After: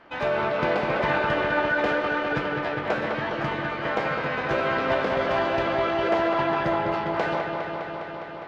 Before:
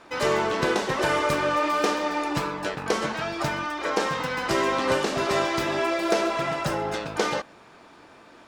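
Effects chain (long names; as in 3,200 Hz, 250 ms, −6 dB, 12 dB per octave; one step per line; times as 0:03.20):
high-frequency loss of the air 500 metres
delay with a low-pass on its return 204 ms, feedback 79%, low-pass 3,800 Hz, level −5 dB
formants moved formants +4 semitones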